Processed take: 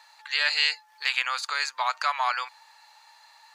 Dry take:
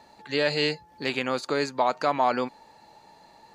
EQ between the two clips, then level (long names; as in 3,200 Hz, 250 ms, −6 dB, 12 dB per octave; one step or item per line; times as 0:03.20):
high-pass filter 1,100 Hz 24 dB per octave
+5.0 dB